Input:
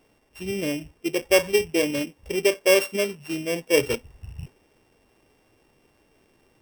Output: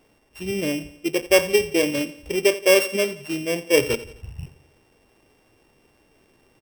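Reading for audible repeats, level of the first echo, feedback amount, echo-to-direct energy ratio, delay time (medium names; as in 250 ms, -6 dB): 3, -17.0 dB, 49%, -16.0 dB, 86 ms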